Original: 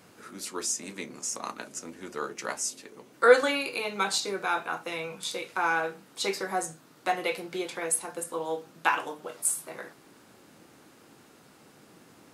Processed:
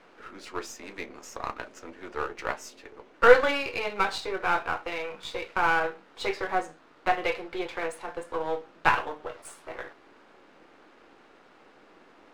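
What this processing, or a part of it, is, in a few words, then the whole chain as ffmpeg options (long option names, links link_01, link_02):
crystal radio: -af "highpass=360,lowpass=2700,aeval=exprs='if(lt(val(0),0),0.447*val(0),val(0))':channel_layout=same,volume=5.5dB"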